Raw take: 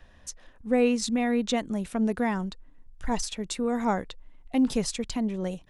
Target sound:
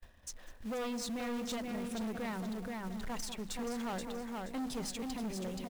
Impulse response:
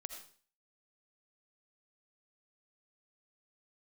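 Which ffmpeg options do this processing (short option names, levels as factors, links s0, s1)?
-filter_complex "[0:a]bandreject=f=50:t=h:w=6,bandreject=f=100:t=h:w=6,bandreject=f=150:t=h:w=6,bandreject=f=200:t=h:w=6,bandreject=f=250:t=h:w=6,bandreject=f=300:t=h:w=6,aeval=exprs='0.1*(abs(mod(val(0)/0.1+3,4)-2)-1)':c=same,asplit=2[s0][s1];[s1]aecho=0:1:477|954|1431:0.473|0.109|0.025[s2];[s0][s2]amix=inputs=2:normalize=0,agate=range=0.0224:threshold=0.00447:ratio=3:detection=peak,asplit=2[s3][s4];[s4]adelay=199,lowpass=f=1000:p=1,volume=0.251,asplit=2[s5][s6];[s6]adelay=199,lowpass=f=1000:p=1,volume=0.34,asplit=2[s7][s8];[s8]adelay=199,lowpass=f=1000:p=1,volume=0.34[s9];[s5][s7][s9]amix=inputs=3:normalize=0[s10];[s3][s10]amix=inputs=2:normalize=0,asoftclip=type=tanh:threshold=0.0282,acrusher=bits=4:mode=log:mix=0:aa=0.000001,alimiter=level_in=3.55:limit=0.0631:level=0:latency=1:release=56,volume=0.282"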